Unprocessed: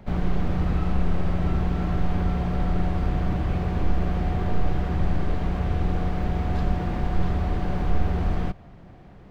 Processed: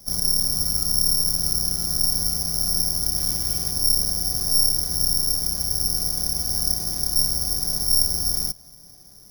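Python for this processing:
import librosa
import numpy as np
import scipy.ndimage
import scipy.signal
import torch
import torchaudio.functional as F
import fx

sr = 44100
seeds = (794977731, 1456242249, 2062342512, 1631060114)

y = fx.high_shelf(x, sr, hz=2600.0, db=10.5, at=(3.16, 3.71))
y = (np.kron(scipy.signal.resample_poly(y, 1, 8), np.eye(8)[0]) * 8)[:len(y)]
y = F.gain(torch.from_numpy(y), -10.0).numpy()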